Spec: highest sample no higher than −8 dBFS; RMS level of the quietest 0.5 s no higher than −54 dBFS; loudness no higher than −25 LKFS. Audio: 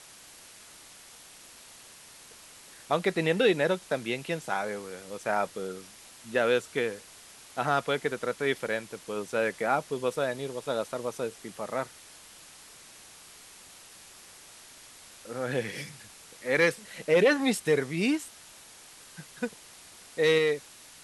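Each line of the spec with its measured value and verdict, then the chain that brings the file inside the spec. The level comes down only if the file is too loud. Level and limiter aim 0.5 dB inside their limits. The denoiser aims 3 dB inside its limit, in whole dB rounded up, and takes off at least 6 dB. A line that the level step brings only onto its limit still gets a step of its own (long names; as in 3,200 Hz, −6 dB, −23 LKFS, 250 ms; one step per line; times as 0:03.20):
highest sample −12.0 dBFS: in spec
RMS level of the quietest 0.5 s −51 dBFS: out of spec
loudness −29.0 LKFS: in spec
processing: broadband denoise 6 dB, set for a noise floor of −51 dBFS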